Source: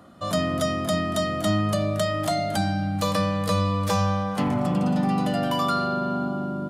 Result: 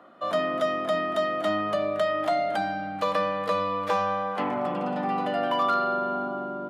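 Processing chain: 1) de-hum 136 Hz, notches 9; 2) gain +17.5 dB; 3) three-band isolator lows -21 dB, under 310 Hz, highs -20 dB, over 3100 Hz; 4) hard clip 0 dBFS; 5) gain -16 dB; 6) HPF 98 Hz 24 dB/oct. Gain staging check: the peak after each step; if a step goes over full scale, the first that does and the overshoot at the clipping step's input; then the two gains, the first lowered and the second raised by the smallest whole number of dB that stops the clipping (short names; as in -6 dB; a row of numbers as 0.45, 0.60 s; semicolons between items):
-12.0, +5.5, +3.5, 0.0, -16.0, -14.0 dBFS; step 2, 3.5 dB; step 2 +13.5 dB, step 5 -12 dB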